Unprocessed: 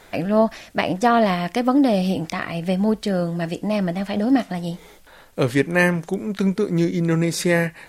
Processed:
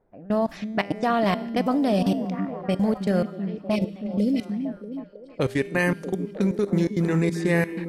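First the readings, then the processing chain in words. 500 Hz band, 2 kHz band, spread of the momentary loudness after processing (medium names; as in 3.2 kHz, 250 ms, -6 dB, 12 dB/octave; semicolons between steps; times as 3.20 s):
-4.0 dB, -5.5 dB, 8 LU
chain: level held to a coarse grid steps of 21 dB; level-controlled noise filter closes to 580 Hz, open at -22 dBFS; time-frequency box 3.76–4.46 s, 610–2000 Hz -26 dB; feedback comb 200 Hz, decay 1.3 s, mix 60%; on a send: repeats whose band climbs or falls 318 ms, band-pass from 220 Hz, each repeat 0.7 oct, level -5.5 dB; on the sum: trim +7.5 dB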